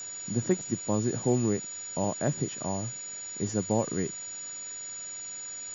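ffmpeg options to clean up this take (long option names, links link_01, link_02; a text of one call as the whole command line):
ffmpeg -i in.wav -af "bandreject=frequency=6900:width=30,afwtdn=0.0045" out.wav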